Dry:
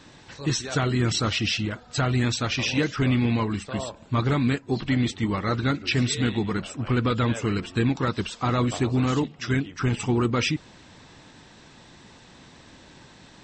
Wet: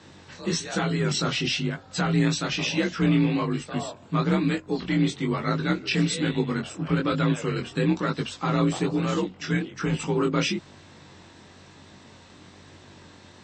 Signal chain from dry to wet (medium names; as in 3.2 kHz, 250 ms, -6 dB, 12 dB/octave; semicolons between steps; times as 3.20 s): mains buzz 50 Hz, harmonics 30, -55 dBFS -4 dB/octave; chorus 1.1 Hz, delay 17.5 ms, depth 7.1 ms; frequency shift +41 Hz; trim +2 dB